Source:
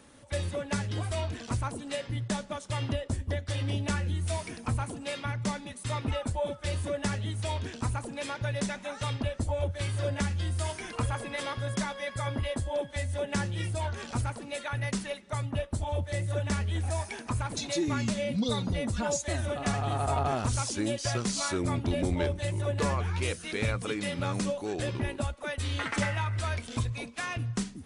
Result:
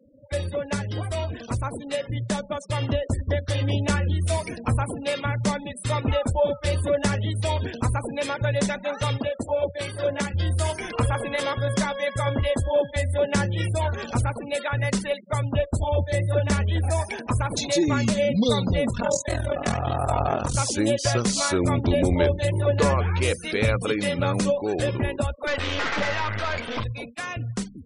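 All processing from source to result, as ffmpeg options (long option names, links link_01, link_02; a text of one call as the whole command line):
ffmpeg -i in.wav -filter_complex "[0:a]asettb=1/sr,asplit=3[link_01][link_02][link_03];[link_01]atrim=end=9.184[link_04];[link_02]atrim=start=9.18:end=10.34,asetpts=PTS-STARTPTS,afade=type=in:duration=0.004:curve=qsin,afade=type=out:start_time=1.156:duration=0.004:curve=qsin,highpass=190,tremolo=f=57:d=0.333[link_05];[link_03]atrim=start=10.336[link_06];[link_04][link_05]acrossfade=duration=0.004:curve1=hsin:curve2=qsin[link_07];[link_07][link_06]acrossfade=duration=0.004:curve1=qsin:curve2=hsin,asettb=1/sr,asplit=3[link_08][link_09][link_10];[link_08]atrim=end=18.894[link_11];[link_09]atrim=start=18.89:end=20.55,asetpts=PTS-STARTPTS,afade=type=in:duration=0.004:curve=qsin,afade=type=out:start_time=1.656:duration=0.004:curve=qsin,bandreject=frequency=60:width_type=h:width=6,bandreject=frequency=120:width_type=h:width=6,bandreject=frequency=180:width_type=h:width=6,bandreject=frequency=240:width_type=h:width=6,bandreject=frequency=300:width_type=h:width=6,bandreject=frequency=360:width_type=h:width=6,bandreject=frequency=420:width_type=h:width=6,bandreject=frequency=480:width_type=h:width=6,aeval=exprs='val(0)+0.00158*sin(2*PI*990*n/s)':channel_layout=same,aeval=exprs='val(0)*sin(2*PI*21*n/s)':channel_layout=same[link_12];[link_10]atrim=start=20.546[link_13];[link_11][link_12]acrossfade=duration=0.004:curve1=hsin:curve2=qsin[link_14];[link_14][link_13]acrossfade=duration=0.004:curve1=qsin:curve2=hsin,asettb=1/sr,asplit=3[link_15][link_16][link_17];[link_15]atrim=end=25.474[link_18];[link_16]atrim=start=25.47:end=26.84,asetpts=PTS-STARTPTS,afade=type=in:duration=0.004:curve=qsin,afade=type=out:start_time=1.366:duration=0.004:curve=qsin,acrossover=split=3500[link_19][link_20];[link_20]acompressor=threshold=-54dB:ratio=4:attack=1:release=60[link_21];[link_19][link_21]amix=inputs=2:normalize=0,asplit=2[link_22][link_23];[link_23]highpass=frequency=720:poles=1,volume=24dB,asoftclip=type=tanh:threshold=-19.5dB[link_24];[link_22][link_24]amix=inputs=2:normalize=0,lowpass=frequency=2800:poles=1,volume=-6dB,aeval=exprs='clip(val(0),-1,0.0119)':channel_layout=same[link_25];[link_17]atrim=start=26.836[link_26];[link_18][link_25]acrossfade=duration=0.004:curve1=hsin:curve2=qsin[link_27];[link_27][link_26]acrossfade=duration=0.004:curve1=qsin:curve2=hsin,equalizer=frequency=520:width_type=o:width=0.52:gain=4.5,afftfilt=real='re*gte(hypot(re,im),0.00708)':imag='im*gte(hypot(re,im),0.00708)':win_size=1024:overlap=0.75,dynaudnorm=framelen=310:gausssize=17:maxgain=4dB,volume=3dB" out.wav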